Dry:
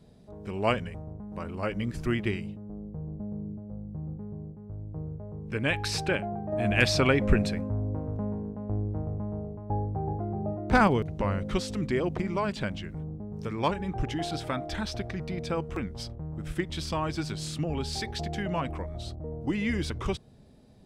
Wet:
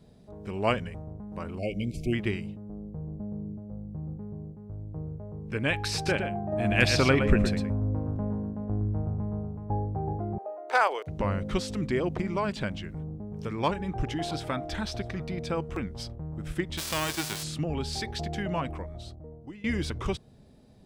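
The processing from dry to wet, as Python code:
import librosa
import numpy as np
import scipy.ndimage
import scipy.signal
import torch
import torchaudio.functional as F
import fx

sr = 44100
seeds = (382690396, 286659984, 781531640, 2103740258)

y = fx.spec_erase(x, sr, start_s=1.59, length_s=0.54, low_hz=770.0, high_hz=2100.0)
y = fx.echo_single(y, sr, ms=115, db=-7.5, at=(5.94, 9.75))
y = fx.cheby2_highpass(y, sr, hz=190.0, order=4, stop_db=50, at=(10.38, 11.07))
y = fx.echo_single(y, sr, ms=651, db=-23.0, at=(12.69, 15.27))
y = fx.envelope_flatten(y, sr, power=0.3, at=(16.77, 17.42), fade=0.02)
y = fx.edit(y, sr, fx.fade_out_to(start_s=18.57, length_s=1.07, floor_db=-21.0), tone=tone)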